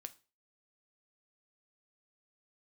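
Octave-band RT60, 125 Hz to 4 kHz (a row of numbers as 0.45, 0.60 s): 0.35, 0.35, 0.35, 0.30, 0.30, 0.30 s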